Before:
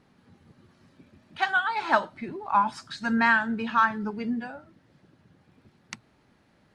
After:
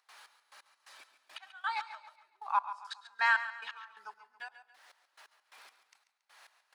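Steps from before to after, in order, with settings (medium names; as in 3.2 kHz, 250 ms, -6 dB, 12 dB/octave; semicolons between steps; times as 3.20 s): high-pass 800 Hz 24 dB/octave; treble shelf 4.7 kHz +8 dB; upward compressor, threshold -34 dBFS; trance gate ".xx...x.." 174 bpm -24 dB; feedback delay 139 ms, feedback 39%, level -13 dB; on a send at -18 dB: reverberation RT60 0.50 s, pre-delay 103 ms; on the sum: trim -5.5 dB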